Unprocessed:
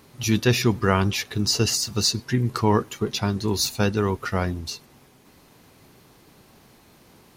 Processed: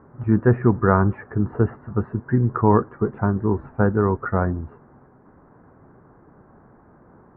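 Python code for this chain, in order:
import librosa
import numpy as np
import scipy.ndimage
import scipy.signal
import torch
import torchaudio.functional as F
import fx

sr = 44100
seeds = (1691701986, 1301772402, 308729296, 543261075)

y = scipy.signal.sosfilt(scipy.signal.butter(8, 1600.0, 'lowpass', fs=sr, output='sos'), x)
y = F.gain(torch.from_numpy(y), 3.5).numpy()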